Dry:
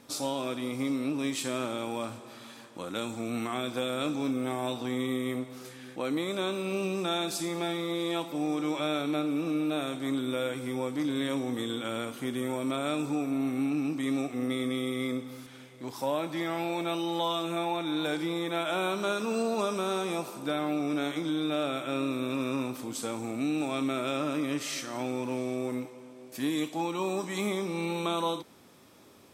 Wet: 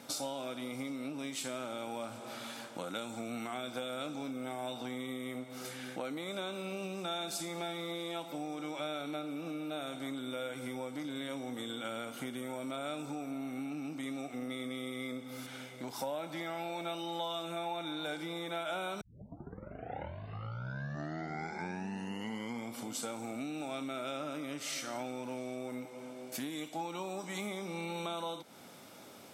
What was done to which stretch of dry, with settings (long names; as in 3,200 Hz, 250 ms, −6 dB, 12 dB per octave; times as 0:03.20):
0:19.01: tape start 4.05 s
whole clip: downward compressor 4 to 1, threshold −41 dBFS; high-pass filter 160 Hz; comb filter 1.4 ms, depth 39%; level +4 dB